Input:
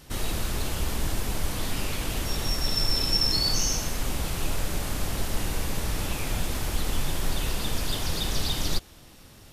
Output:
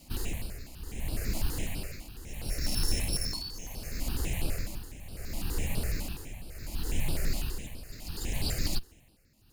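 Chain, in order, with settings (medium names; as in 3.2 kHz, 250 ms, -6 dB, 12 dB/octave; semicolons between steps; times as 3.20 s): comb filter that takes the minimum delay 0.43 ms; tremolo 0.7 Hz, depth 80%; stepped phaser 12 Hz 430–6700 Hz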